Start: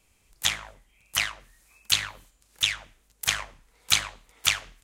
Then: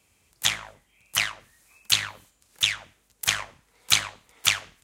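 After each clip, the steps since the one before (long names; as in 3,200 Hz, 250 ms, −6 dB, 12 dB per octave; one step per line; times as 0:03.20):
high-pass filter 64 Hz 24 dB per octave
level +1.5 dB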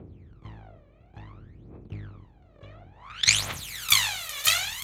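compressor on every frequency bin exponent 0.4
phase shifter 0.57 Hz, delay 1.8 ms, feedback 78%
low-pass filter sweep 350 Hz → 14,000 Hz, 0:02.91–0:03.41
level −8 dB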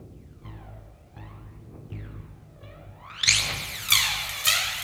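convolution reverb RT60 2.2 s, pre-delay 6 ms, DRR 2 dB
bit reduction 11 bits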